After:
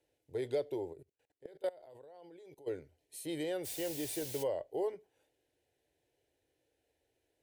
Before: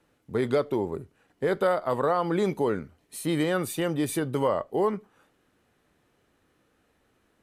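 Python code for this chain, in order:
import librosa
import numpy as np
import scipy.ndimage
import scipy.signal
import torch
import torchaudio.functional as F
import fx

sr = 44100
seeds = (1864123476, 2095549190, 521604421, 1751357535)

y = fx.highpass(x, sr, hz=65.0, slope=6)
y = fx.quant_dither(y, sr, seeds[0], bits=6, dither='triangular', at=(3.64, 4.42), fade=0.02)
y = fx.fixed_phaser(y, sr, hz=500.0, stages=4)
y = fx.level_steps(y, sr, step_db=23, at=(0.92, 2.66), fade=0.02)
y = y * librosa.db_to_amplitude(-8.5)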